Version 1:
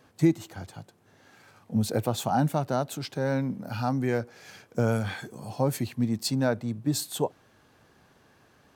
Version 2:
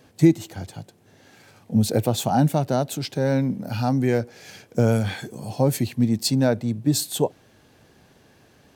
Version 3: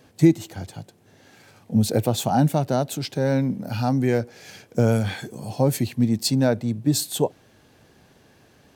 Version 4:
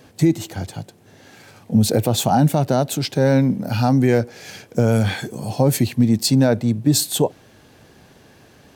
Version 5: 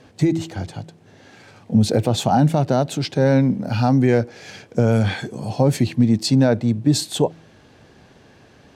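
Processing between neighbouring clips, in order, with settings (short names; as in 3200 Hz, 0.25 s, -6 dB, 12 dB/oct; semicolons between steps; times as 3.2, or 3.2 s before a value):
bell 1200 Hz -7.5 dB 1 oct; gain +6.5 dB
nothing audible
limiter -12.5 dBFS, peak gain reduction 8 dB; gain +6 dB
air absorption 62 m; de-hum 163.2 Hz, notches 2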